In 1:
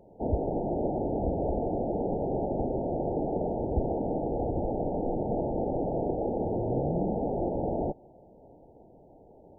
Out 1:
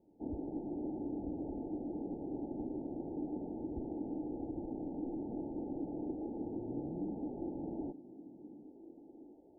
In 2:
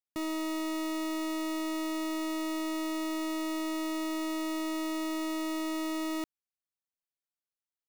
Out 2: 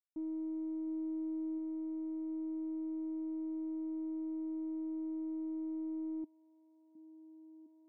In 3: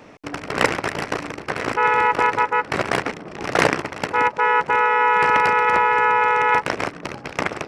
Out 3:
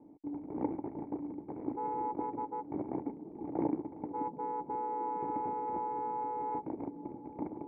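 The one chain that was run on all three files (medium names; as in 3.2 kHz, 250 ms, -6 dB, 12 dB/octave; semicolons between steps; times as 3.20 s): cascade formant filter u; repeats whose band climbs or falls 709 ms, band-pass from 190 Hz, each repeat 0.7 oct, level -11.5 dB; trim -3 dB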